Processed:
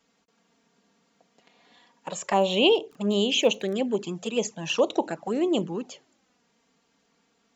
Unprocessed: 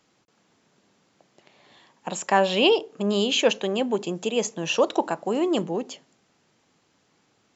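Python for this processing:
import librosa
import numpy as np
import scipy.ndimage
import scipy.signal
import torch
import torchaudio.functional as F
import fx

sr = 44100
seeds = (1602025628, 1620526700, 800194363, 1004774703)

y = fx.dmg_crackle(x, sr, seeds[0], per_s=16.0, level_db=-31.0, at=(2.33, 3.75), fade=0.02)
y = fx.env_flanger(y, sr, rest_ms=4.4, full_db=-19.0)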